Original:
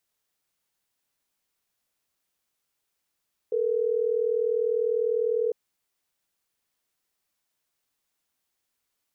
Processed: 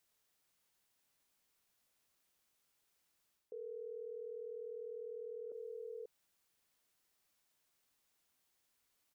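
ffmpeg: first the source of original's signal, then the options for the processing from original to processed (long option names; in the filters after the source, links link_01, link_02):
-f lavfi -i "aevalsrc='0.0562*(sin(2*PI*440*t)+sin(2*PI*480*t))*clip(min(mod(t,6),2-mod(t,6))/0.005,0,1)':duration=3.12:sample_rate=44100"
-af "aecho=1:1:538:0.168,areverse,acompressor=threshold=-35dB:ratio=4,areverse,alimiter=level_in=17dB:limit=-24dB:level=0:latency=1:release=93,volume=-17dB"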